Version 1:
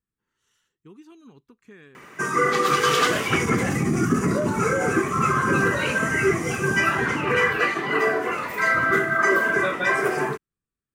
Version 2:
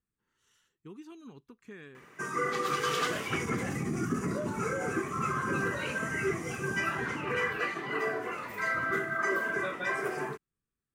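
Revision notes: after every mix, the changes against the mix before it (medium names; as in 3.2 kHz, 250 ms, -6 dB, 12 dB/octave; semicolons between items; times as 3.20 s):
background -10.5 dB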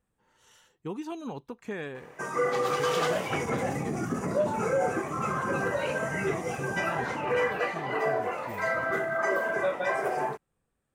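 speech +10.5 dB; master: add high-order bell 680 Hz +11 dB 1.1 oct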